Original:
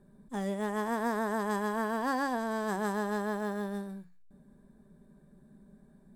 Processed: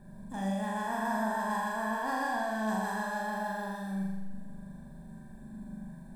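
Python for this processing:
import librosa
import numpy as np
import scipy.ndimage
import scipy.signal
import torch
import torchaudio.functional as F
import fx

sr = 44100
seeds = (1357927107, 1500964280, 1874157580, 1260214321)

p1 = x + 0.7 * np.pad(x, (int(1.2 * sr / 1000.0), 0))[:len(x)]
p2 = fx.over_compress(p1, sr, threshold_db=-43.0, ratio=-1.0)
p3 = p1 + (p2 * librosa.db_to_amplitude(0.5))
p4 = fx.room_flutter(p3, sr, wall_m=7.1, rt60_s=1.2)
y = p4 * librosa.db_to_amplitude(-7.5)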